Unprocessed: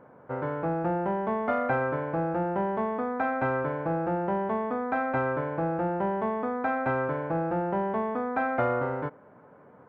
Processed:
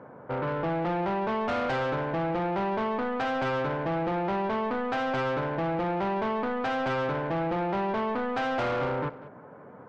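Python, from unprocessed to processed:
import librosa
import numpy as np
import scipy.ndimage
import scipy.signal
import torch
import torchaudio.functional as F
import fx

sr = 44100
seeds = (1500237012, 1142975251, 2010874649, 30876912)

p1 = scipy.signal.sosfilt(scipy.signal.butter(4, 71.0, 'highpass', fs=sr, output='sos'), x)
p2 = 10.0 ** (-31.5 / 20.0) * np.tanh(p1 / 10.0 ** (-31.5 / 20.0))
p3 = fx.air_absorb(p2, sr, metres=82.0)
p4 = p3 + fx.echo_single(p3, sr, ms=192, db=-16.5, dry=0)
y = F.gain(torch.from_numpy(p4), 6.0).numpy()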